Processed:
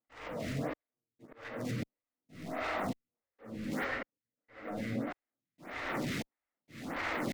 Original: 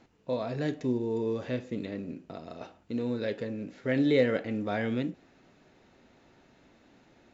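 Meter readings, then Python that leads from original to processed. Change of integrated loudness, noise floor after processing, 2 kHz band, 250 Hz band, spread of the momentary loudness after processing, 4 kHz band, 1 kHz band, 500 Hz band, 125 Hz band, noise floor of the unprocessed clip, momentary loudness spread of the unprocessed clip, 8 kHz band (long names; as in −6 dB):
−8.0 dB, below −85 dBFS, 0.0 dB, −8.5 dB, 16 LU, −2.5 dB, +2.0 dB, −10.5 dB, −5.5 dB, −62 dBFS, 17 LU, can't be measured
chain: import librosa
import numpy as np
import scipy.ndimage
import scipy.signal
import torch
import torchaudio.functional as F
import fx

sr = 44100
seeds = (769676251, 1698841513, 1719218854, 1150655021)

y = x + 0.5 * 10.0 ** (-28.0 / 20.0) * np.sign(x)
y = fx.over_compress(y, sr, threshold_db=-32.0, ratio=-1.0)
y = scipy.signal.sosfilt(scipy.signal.butter(2, 51.0, 'highpass', fs=sr, output='sos'), y)
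y = np.clip(y, -10.0 ** (-30.0 / 20.0), 10.0 ** (-30.0 / 20.0))
y = fx.high_shelf(y, sr, hz=5900.0, db=-10.5)
y = fx.room_shoebox(y, sr, seeds[0], volume_m3=180.0, walls='hard', distance_m=0.41)
y = fx.level_steps(y, sr, step_db=17)
y = fx.graphic_eq_31(y, sr, hz=(400, 1250, 2000), db=(-5, 4, 9))
y = y + 10.0 ** (-8.0 / 20.0) * np.pad(y, (int(396 * sr / 1000.0), 0))[:len(y)]
y = fx.step_gate(y, sr, bpm=164, pattern='.xxxxxxx....', floor_db=-60.0, edge_ms=4.5)
y = fx.auto_swell(y, sr, attack_ms=394.0)
y = fx.stagger_phaser(y, sr, hz=1.6)
y = y * 10.0 ** (1.0 / 20.0)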